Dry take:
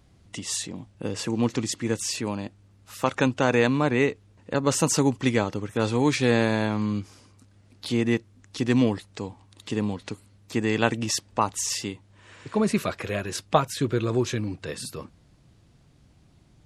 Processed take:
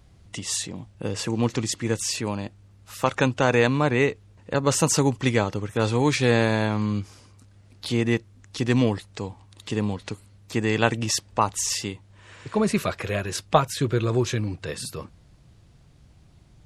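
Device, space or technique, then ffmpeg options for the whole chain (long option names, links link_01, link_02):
low shelf boost with a cut just above: -af "lowshelf=frequency=89:gain=5.5,equalizer=frequency=260:width_type=o:width=0.8:gain=-4,volume=2dB"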